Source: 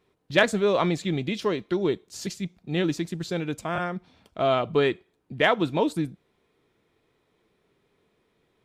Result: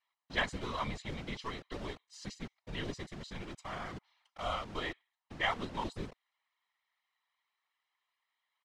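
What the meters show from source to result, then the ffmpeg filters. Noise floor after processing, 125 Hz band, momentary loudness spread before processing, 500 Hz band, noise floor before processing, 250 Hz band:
under -85 dBFS, -13.0 dB, 12 LU, -19.0 dB, -71 dBFS, -17.0 dB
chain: -filter_complex "[0:a]aecho=1:1:1:0.64,acrossover=split=860[a][b];[a]acrusher=bits=3:dc=4:mix=0:aa=0.000001[c];[c][b]amix=inputs=2:normalize=0,afftfilt=real='hypot(re,im)*cos(2*PI*random(0))':imag='hypot(re,im)*sin(2*PI*random(1))':win_size=512:overlap=0.75,lowpass=5.8k,volume=-4.5dB"

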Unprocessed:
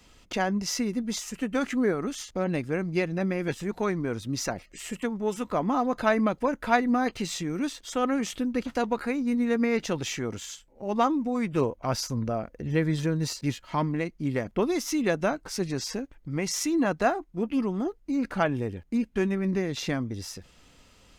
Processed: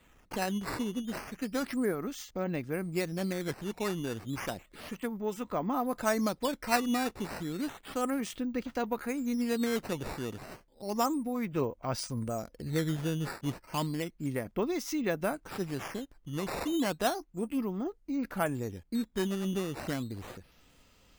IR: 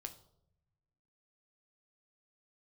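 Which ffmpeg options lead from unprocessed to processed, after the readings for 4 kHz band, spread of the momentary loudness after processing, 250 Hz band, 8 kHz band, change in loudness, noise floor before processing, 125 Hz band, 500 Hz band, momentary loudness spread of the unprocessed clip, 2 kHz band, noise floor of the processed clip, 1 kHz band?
-5.0 dB, 8 LU, -5.5 dB, -7.0 dB, -5.5 dB, -58 dBFS, -5.5 dB, -5.5 dB, 8 LU, -5.5 dB, -64 dBFS, -5.5 dB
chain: -af "acrusher=samples=8:mix=1:aa=0.000001:lfo=1:lforange=12.8:lforate=0.32,volume=-5.5dB"

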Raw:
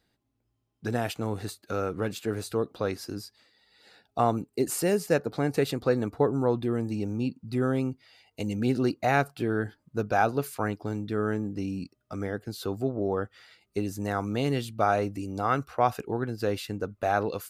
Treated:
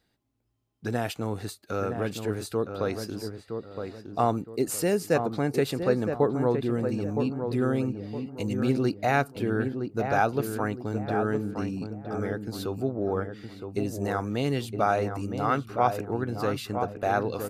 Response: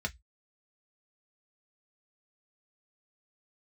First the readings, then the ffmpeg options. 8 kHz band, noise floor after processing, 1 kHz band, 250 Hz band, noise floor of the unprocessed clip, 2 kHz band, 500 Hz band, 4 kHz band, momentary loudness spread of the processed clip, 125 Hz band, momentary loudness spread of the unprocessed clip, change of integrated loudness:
0.0 dB, -63 dBFS, +0.5 dB, +1.0 dB, -77 dBFS, +0.5 dB, +1.0 dB, 0.0 dB, 9 LU, +1.0 dB, 9 LU, +0.5 dB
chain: -filter_complex "[0:a]asplit=2[a][b];[b]adelay=965,lowpass=f=1.4k:p=1,volume=-6dB,asplit=2[c][d];[d]adelay=965,lowpass=f=1.4k:p=1,volume=0.37,asplit=2[e][f];[f]adelay=965,lowpass=f=1.4k:p=1,volume=0.37,asplit=2[g][h];[h]adelay=965,lowpass=f=1.4k:p=1,volume=0.37[i];[a][c][e][g][i]amix=inputs=5:normalize=0"

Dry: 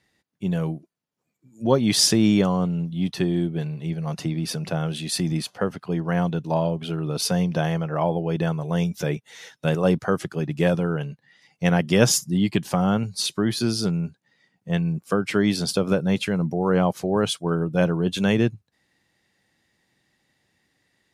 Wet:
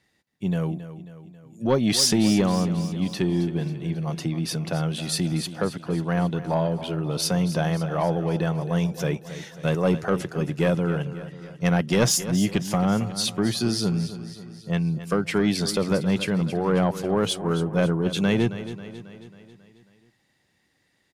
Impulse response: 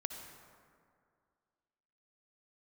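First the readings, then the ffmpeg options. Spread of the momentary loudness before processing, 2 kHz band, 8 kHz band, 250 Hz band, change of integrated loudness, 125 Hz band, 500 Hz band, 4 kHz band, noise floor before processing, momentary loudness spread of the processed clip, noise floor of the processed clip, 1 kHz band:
10 LU, -1.5 dB, -0.5 dB, -1.0 dB, -1.0 dB, -0.5 dB, -1.0 dB, -0.5 dB, -75 dBFS, 11 LU, -68 dBFS, -1.0 dB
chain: -filter_complex "[0:a]asoftclip=type=tanh:threshold=-12dB,asplit=2[a][b];[b]aecho=0:1:271|542|813|1084|1355|1626:0.224|0.123|0.0677|0.0372|0.0205|0.0113[c];[a][c]amix=inputs=2:normalize=0"

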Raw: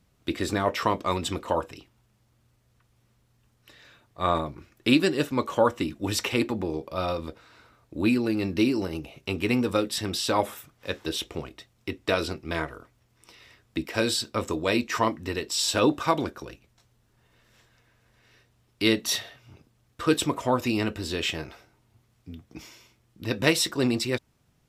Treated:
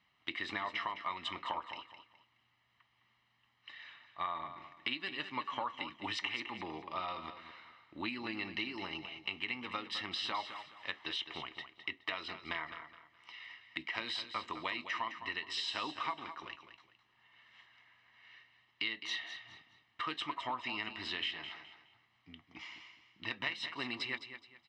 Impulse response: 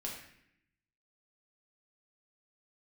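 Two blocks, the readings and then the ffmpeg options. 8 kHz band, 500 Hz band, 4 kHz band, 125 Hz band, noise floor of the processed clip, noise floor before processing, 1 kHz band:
-24.0 dB, -22.0 dB, -8.0 dB, -23.5 dB, -75 dBFS, -67 dBFS, -9.5 dB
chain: -filter_complex "[0:a]lowpass=f=2.8k:w=0.5412,lowpass=f=2.8k:w=1.3066,aderivative,aecho=1:1:1:0.65,acompressor=threshold=-49dB:ratio=6,asplit=2[a][b];[b]aecho=0:1:210|420|630:0.299|0.0866|0.0251[c];[a][c]amix=inputs=2:normalize=0,volume=13.5dB"

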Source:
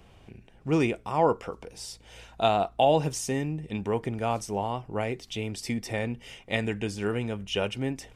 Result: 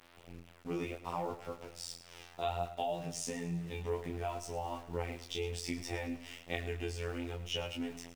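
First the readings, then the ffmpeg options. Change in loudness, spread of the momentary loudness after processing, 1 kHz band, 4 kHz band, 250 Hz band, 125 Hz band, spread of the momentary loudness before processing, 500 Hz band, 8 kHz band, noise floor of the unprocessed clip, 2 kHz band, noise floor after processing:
-11.0 dB, 8 LU, -11.5 dB, -7.0 dB, -11.0 dB, -9.5 dB, 14 LU, -11.5 dB, -6.0 dB, -55 dBFS, -9.0 dB, -58 dBFS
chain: -filter_complex "[0:a]lowpass=10k,acrossover=split=110[a][b];[b]acompressor=threshold=-31dB:ratio=6[c];[a][c]amix=inputs=2:normalize=0,afftfilt=real='hypot(re,im)*cos(PI*b)':imag='0':win_size=2048:overlap=0.75,flanger=delay=19.5:depth=6.3:speed=0.65,aeval=exprs='val(0)*gte(abs(val(0)),0.00188)':c=same,asplit=2[d][e];[e]aecho=0:1:106|212|318|424:0.2|0.0878|0.0386|0.017[f];[d][f]amix=inputs=2:normalize=0,volume=3dB"

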